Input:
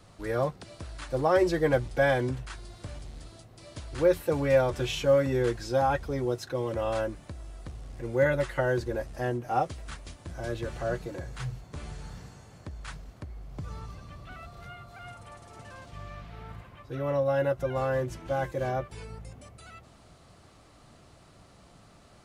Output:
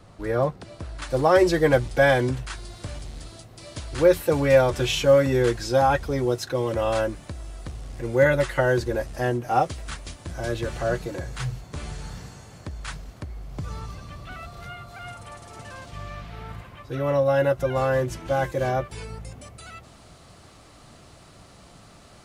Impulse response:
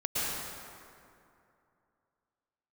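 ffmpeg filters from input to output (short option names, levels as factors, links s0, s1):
-af "asetnsamples=n=441:p=0,asendcmd='1.02 highshelf g 3.5',highshelf=f=2300:g=-6.5,volume=1.88"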